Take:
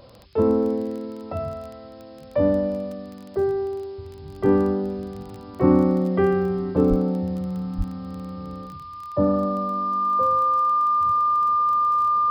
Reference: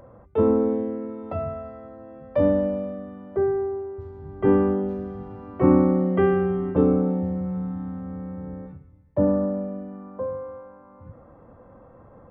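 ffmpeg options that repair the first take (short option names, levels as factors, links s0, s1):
-filter_complex "[0:a]adeclick=t=4,bandreject=f=1200:w=30,asplit=3[s0][s1][s2];[s0]afade=t=out:st=6.89:d=0.02[s3];[s1]highpass=f=140:w=0.5412,highpass=f=140:w=1.3066,afade=t=in:st=6.89:d=0.02,afade=t=out:st=7.01:d=0.02[s4];[s2]afade=t=in:st=7.01:d=0.02[s5];[s3][s4][s5]amix=inputs=3:normalize=0,asplit=3[s6][s7][s8];[s6]afade=t=out:st=7.77:d=0.02[s9];[s7]highpass=f=140:w=0.5412,highpass=f=140:w=1.3066,afade=t=in:st=7.77:d=0.02,afade=t=out:st=7.89:d=0.02[s10];[s8]afade=t=in:st=7.89:d=0.02[s11];[s9][s10][s11]amix=inputs=3:normalize=0,afftdn=nr=9:nf=-40"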